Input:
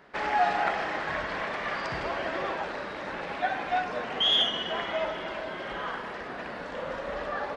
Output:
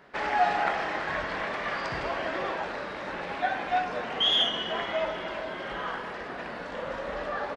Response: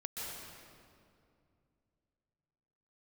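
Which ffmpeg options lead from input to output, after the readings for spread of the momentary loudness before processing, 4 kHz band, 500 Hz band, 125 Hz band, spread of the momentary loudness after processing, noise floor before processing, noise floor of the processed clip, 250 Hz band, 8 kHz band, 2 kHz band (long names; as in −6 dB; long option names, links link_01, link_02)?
11 LU, 0.0 dB, +0.5 dB, +0.5 dB, 11 LU, −38 dBFS, −38 dBFS, +0.5 dB, can't be measured, +0.5 dB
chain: -filter_complex "[0:a]asplit=2[link_01][link_02];[link_02]adelay=22,volume=-11dB[link_03];[link_01][link_03]amix=inputs=2:normalize=0"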